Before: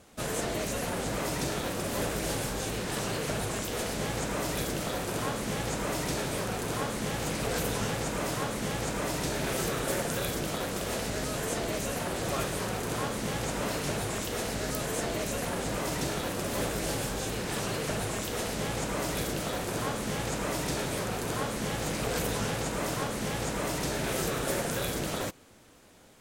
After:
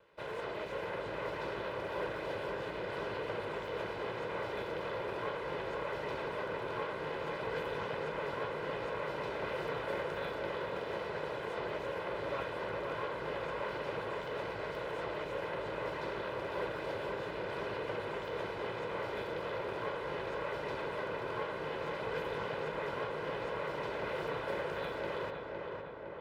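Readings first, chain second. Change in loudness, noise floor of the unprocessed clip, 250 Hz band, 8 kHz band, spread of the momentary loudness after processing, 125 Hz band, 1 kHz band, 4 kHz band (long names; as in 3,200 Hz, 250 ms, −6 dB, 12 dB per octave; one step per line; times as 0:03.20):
−7.0 dB, −35 dBFS, −12.0 dB, below −30 dB, 2 LU, −13.0 dB, −4.0 dB, −11.5 dB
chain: lower of the sound and its delayed copy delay 2 ms
high-pass filter 390 Hz 6 dB per octave
high-frequency loss of the air 400 metres
feedback echo with a low-pass in the loop 510 ms, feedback 70%, low-pass 2,400 Hz, level −4 dB
level −1.5 dB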